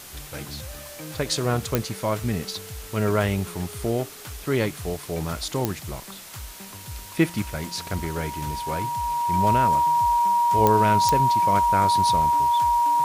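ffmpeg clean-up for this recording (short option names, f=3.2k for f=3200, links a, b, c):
-af "adeclick=t=4,bandreject=f=950:w=30,afwtdn=0.0089"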